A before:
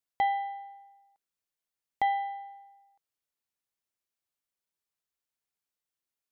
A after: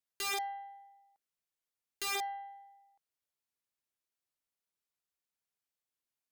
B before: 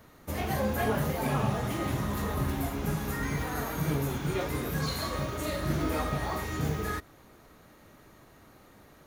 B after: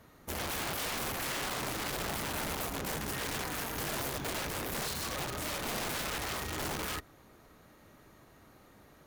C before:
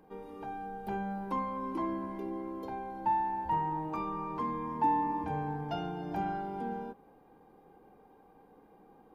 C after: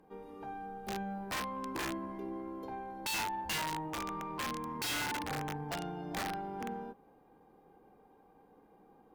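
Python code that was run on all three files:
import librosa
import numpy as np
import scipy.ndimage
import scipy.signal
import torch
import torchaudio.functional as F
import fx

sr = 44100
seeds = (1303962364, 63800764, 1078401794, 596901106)

y = (np.mod(10.0 ** (27.5 / 20.0) * x + 1.0, 2.0) - 1.0) / 10.0 ** (27.5 / 20.0)
y = fx.cheby_harmonics(y, sr, harmonics=(4,), levels_db=(-27,), full_scale_db=-27.5)
y = y * librosa.db_to_amplitude(-3.0)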